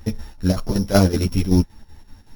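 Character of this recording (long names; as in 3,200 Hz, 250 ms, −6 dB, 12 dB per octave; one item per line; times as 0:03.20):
a buzz of ramps at a fixed pitch in blocks of 8 samples
chopped level 5.3 Hz, depth 65%, duty 70%
a shimmering, thickened sound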